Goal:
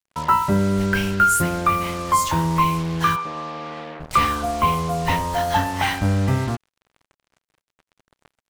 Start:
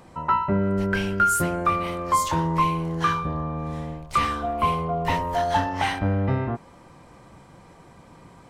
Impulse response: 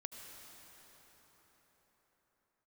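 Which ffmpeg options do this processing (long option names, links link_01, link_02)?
-filter_complex "[0:a]acrusher=bits=5:mix=0:aa=0.5,asplit=3[link_01][link_02][link_03];[link_01]afade=type=out:start_time=3.15:duration=0.02[link_04];[link_02]highpass=380,lowpass=3500,afade=type=in:start_time=3.15:duration=0.02,afade=type=out:start_time=3.99:duration=0.02[link_05];[link_03]afade=type=in:start_time=3.99:duration=0.02[link_06];[link_04][link_05][link_06]amix=inputs=3:normalize=0,adynamicequalizer=threshold=0.0141:dfrequency=510:dqfactor=0.86:tfrequency=510:tqfactor=0.86:attack=5:release=100:ratio=0.375:range=2.5:mode=cutabove:tftype=bell,volume=4.5dB"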